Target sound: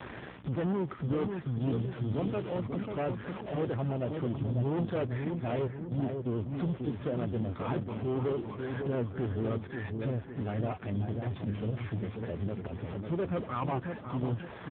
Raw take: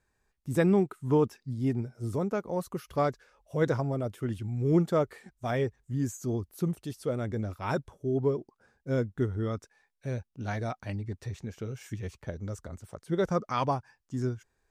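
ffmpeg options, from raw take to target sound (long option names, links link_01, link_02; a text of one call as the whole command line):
ffmpeg -i in.wav -filter_complex "[0:a]aeval=exprs='val(0)+0.5*0.01*sgn(val(0))':channel_layout=same,asplit=2[link_01][link_02];[link_02]acrusher=samples=13:mix=1:aa=0.000001,volume=-3.5dB[link_03];[link_01][link_03]amix=inputs=2:normalize=0,asettb=1/sr,asplit=3[link_04][link_05][link_06];[link_04]atrim=end=1.604[link_07];[link_05]atrim=start=1.6:end=2.57,asetpts=PTS-STARTPTS,afade=type=in:duration=0.004:curve=qsin,afade=type=out:start_time=0.966:duration=0.004:curve=qsin,highshelf=frequency=3000:gain=10[link_08];[link_06]atrim=start=2.566[link_09];[link_07][link_08]acrossfade=duration=0.004:curve1=hsin:curve2=qsin[link_10];[link_10][link_09]acrossfade=duration=0.004:curve1=qsin:curve2=hsin,asplit=3[link_11][link_12][link_13];[link_11]afade=type=out:start_time=13.18:duration=0.02[link_14];[link_12]highpass=frequency=41:poles=1,afade=type=in:start_time=13.18:duration=0.02,afade=type=out:start_time=13.7:duration=0.02[link_15];[link_13]afade=type=in:start_time=13.7:duration=0.02[link_16];[link_14][link_15][link_16]amix=inputs=3:normalize=0,asoftclip=type=tanh:threshold=-24.5dB,aeval=exprs='val(0)+0.00251*(sin(2*PI*60*n/s)+sin(2*PI*2*60*n/s)/2+sin(2*PI*3*60*n/s)/3+sin(2*PI*4*60*n/s)/4+sin(2*PI*5*60*n/s)/5)':channel_layout=same,asettb=1/sr,asplit=3[link_17][link_18][link_19];[link_17]atrim=end=5.674[link_20];[link_18]atrim=start=5.67:end=6.35,asetpts=PTS-STARTPTS,afade=type=in:duration=0.004:curve=qsin,afade=type=out:start_time=0.676:duration=0.004:curve=qsin,agate=range=-34dB:threshold=-31dB:ratio=16:detection=peak[link_21];[link_19]atrim=start=6.346[link_22];[link_20][link_21]acrossfade=duration=0.004:curve1=hsin:curve2=qsin[link_23];[link_23][link_22]acrossfade=duration=0.004:curve1=qsin:curve2=hsin,alimiter=level_in=9.5dB:limit=-24dB:level=0:latency=1:release=419,volume=-9.5dB,asplit=2[link_24][link_25];[link_25]adelay=544,lowpass=frequency=940:poles=1,volume=-4dB,asplit=2[link_26][link_27];[link_27]adelay=544,lowpass=frequency=940:poles=1,volume=0.51,asplit=2[link_28][link_29];[link_29]adelay=544,lowpass=frequency=940:poles=1,volume=0.51,asplit=2[link_30][link_31];[link_31]adelay=544,lowpass=frequency=940:poles=1,volume=0.51,asplit=2[link_32][link_33];[link_33]adelay=544,lowpass=frequency=940:poles=1,volume=0.51,asplit=2[link_34][link_35];[link_35]adelay=544,lowpass=frequency=940:poles=1,volume=0.51,asplit=2[link_36][link_37];[link_37]adelay=544,lowpass=frequency=940:poles=1,volume=0.51[link_38];[link_24][link_26][link_28][link_30][link_32][link_34][link_36][link_38]amix=inputs=8:normalize=0,volume=6dB" -ar 8000 -c:a libopencore_amrnb -b:a 5150 out.amr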